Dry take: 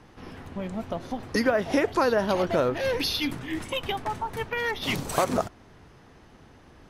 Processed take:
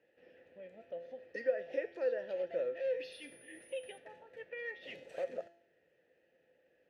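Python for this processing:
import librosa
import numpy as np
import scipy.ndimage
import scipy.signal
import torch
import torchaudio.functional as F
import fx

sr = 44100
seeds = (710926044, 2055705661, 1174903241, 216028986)

y = fx.vowel_filter(x, sr, vowel='e')
y = fx.dmg_tone(y, sr, hz=9900.0, level_db=-53.0, at=(3.11, 3.97), fade=0.02)
y = fx.comb_fb(y, sr, f0_hz=170.0, decay_s=0.65, harmonics='all', damping=0.0, mix_pct=70)
y = F.gain(torch.from_numpy(y), 2.5).numpy()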